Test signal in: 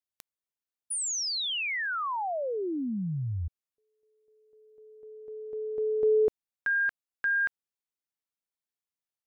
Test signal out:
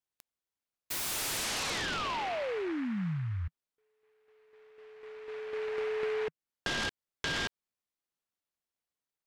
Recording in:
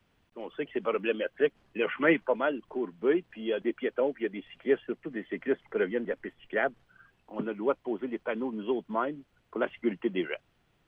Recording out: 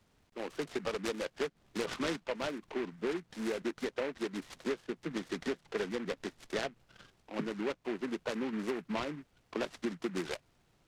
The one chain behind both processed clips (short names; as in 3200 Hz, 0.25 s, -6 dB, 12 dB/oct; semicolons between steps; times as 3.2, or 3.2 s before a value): dynamic EQ 160 Hz, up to +7 dB, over -50 dBFS, Q 2.2; compressor 6:1, threshold -32 dBFS; noise-modulated delay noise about 1500 Hz, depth 0.11 ms